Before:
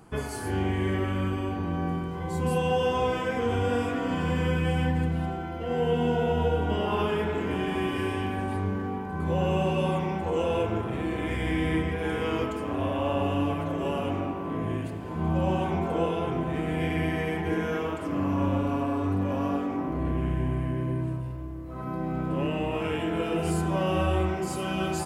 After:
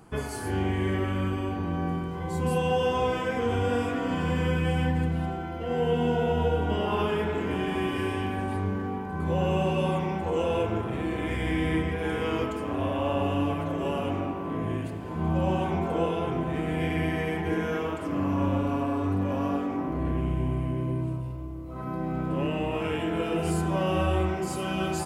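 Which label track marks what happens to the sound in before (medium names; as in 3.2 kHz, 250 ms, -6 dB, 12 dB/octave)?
20.210000	21.760000	peaking EQ 1.7 kHz -12 dB 0.24 oct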